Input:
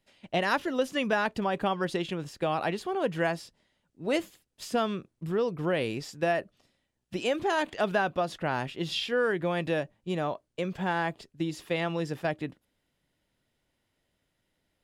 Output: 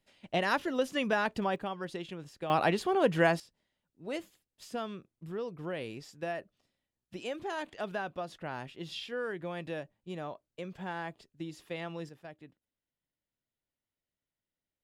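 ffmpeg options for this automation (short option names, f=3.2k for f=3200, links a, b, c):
-af "asetnsamples=n=441:p=0,asendcmd='1.56 volume volume -9dB;2.5 volume volume 2.5dB;3.4 volume volume -9.5dB;12.09 volume volume -18dB',volume=-2.5dB"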